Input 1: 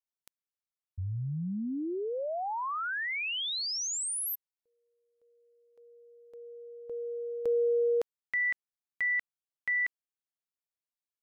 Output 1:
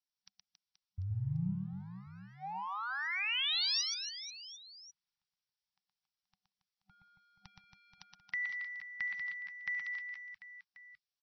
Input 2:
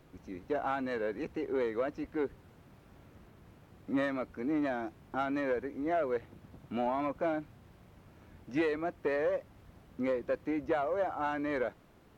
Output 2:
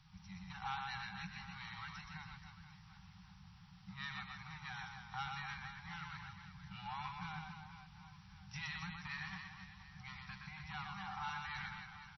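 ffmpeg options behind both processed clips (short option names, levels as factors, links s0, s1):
-filter_complex "[0:a]acrossover=split=2400[s0][s1];[s1]crystalizer=i=4.5:c=0[s2];[s0][s2]amix=inputs=2:normalize=0,acrossover=split=350|2100[s3][s4][s5];[s4]acompressor=threshold=0.00501:ratio=1.5:knee=2.83:detection=peak[s6];[s3][s6][s5]amix=inputs=3:normalize=0,asplit=2[s7][s8];[s8]aeval=exprs='sgn(val(0))*max(abs(val(0))-0.00944,0)':c=same,volume=0.447[s9];[s7][s9]amix=inputs=2:normalize=0,equalizer=f=230:t=o:w=1.1:g=7,acompressor=threshold=0.0282:ratio=10:attack=43:release=32:knee=6,afftfilt=real='re*(1-between(b*sr/4096,200,750))':imag='im*(1-between(b*sr/4096,200,750))':win_size=4096:overlap=0.75,aecho=1:1:120|276|478.8|742.4|1085:0.631|0.398|0.251|0.158|0.1,volume=0.596" -ar 22050 -c:a libmp3lame -b:a 24k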